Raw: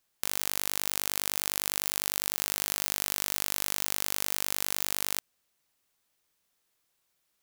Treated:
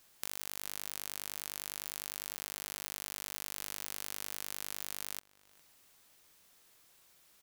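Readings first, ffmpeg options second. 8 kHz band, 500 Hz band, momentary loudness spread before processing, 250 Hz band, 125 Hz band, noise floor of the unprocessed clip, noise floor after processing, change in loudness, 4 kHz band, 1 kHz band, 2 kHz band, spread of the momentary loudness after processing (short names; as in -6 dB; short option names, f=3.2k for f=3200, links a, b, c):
-10.5 dB, -10.5 dB, 0 LU, -10.5 dB, -10.5 dB, -77 dBFS, -66 dBFS, -10.5 dB, -10.5 dB, -10.5 dB, -10.5 dB, 0 LU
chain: -filter_complex "[0:a]acompressor=threshold=-47dB:ratio=6,asplit=2[a][b];[b]adelay=408.2,volume=-20dB,highshelf=f=4k:g=-9.18[c];[a][c]amix=inputs=2:normalize=0,volume=11.5dB"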